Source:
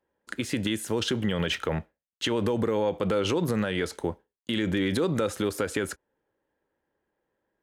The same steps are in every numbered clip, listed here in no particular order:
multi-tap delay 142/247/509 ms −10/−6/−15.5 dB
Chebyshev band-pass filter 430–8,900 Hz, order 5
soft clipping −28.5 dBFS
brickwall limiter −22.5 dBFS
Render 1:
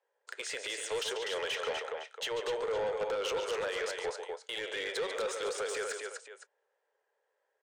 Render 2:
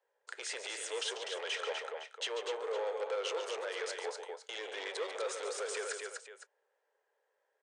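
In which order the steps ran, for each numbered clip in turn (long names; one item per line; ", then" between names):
Chebyshev band-pass filter, then brickwall limiter, then multi-tap delay, then soft clipping
brickwall limiter, then multi-tap delay, then soft clipping, then Chebyshev band-pass filter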